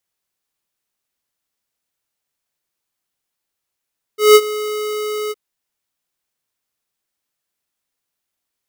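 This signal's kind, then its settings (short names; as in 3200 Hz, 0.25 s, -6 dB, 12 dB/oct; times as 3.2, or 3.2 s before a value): ADSR square 424 Hz, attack 0.172 s, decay 51 ms, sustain -17.5 dB, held 1.13 s, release 33 ms -5 dBFS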